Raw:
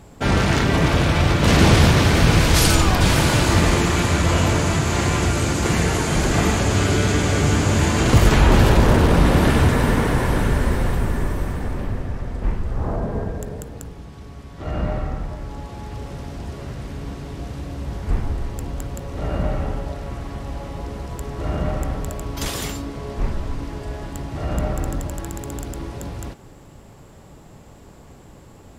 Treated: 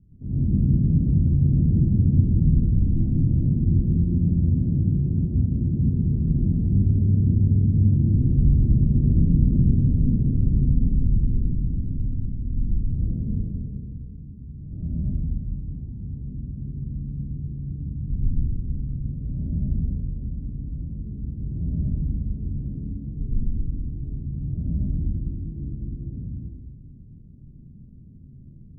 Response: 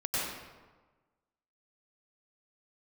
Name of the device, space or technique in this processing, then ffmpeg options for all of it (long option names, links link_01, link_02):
club heard from the street: -filter_complex "[0:a]alimiter=limit=-8.5dB:level=0:latency=1:release=50,lowpass=frequency=230:width=0.5412,lowpass=frequency=230:width=1.3066[link_01];[1:a]atrim=start_sample=2205[link_02];[link_01][link_02]afir=irnorm=-1:irlink=0,volume=-7dB"